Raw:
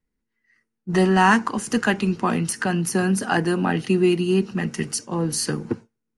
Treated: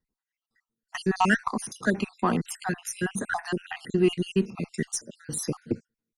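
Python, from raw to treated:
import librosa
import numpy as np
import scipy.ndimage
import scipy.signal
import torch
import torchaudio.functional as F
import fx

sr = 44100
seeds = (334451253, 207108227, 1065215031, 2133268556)

y = fx.spec_dropout(x, sr, seeds[0], share_pct=57)
y = fx.cheby_harmonics(y, sr, harmonics=(6,), levels_db=(-33,), full_scale_db=-7.0)
y = y * librosa.db_to_amplitude(-2.5)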